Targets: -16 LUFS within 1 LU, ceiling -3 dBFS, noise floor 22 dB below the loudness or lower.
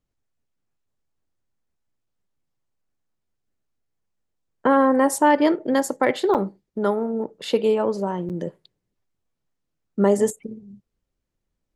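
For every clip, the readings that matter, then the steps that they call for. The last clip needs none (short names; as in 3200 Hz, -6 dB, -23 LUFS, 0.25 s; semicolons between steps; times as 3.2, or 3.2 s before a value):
dropouts 2; longest dropout 8.3 ms; loudness -21.5 LUFS; peak -5.5 dBFS; loudness target -16.0 LUFS
-> interpolate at 6.34/8.29, 8.3 ms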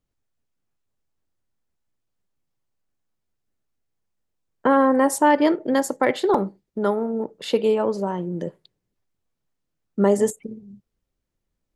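dropouts 0; loudness -21.5 LUFS; peak -5.5 dBFS; loudness target -16.0 LUFS
-> gain +5.5 dB; limiter -3 dBFS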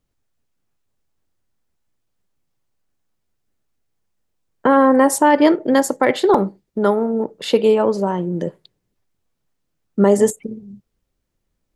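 loudness -16.5 LUFS; peak -3.0 dBFS; noise floor -74 dBFS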